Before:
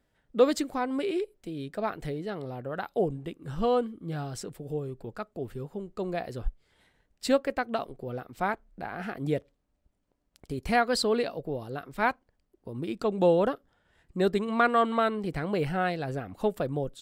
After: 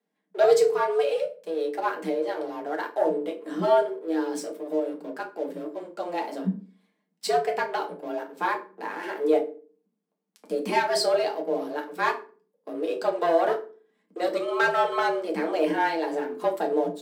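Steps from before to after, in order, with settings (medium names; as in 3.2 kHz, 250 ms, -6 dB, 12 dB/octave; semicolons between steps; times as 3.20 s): waveshaping leveller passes 2; FDN reverb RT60 0.35 s, low-frequency decay 1.5×, high-frequency decay 0.75×, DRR 0.5 dB; frequency shift +160 Hz; trim -7 dB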